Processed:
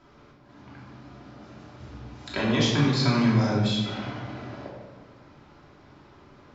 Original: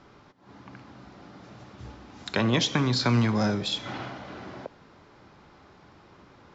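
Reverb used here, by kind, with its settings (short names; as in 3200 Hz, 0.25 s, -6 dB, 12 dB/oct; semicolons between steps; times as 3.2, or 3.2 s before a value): shoebox room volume 830 m³, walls mixed, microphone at 2.9 m; gain -6 dB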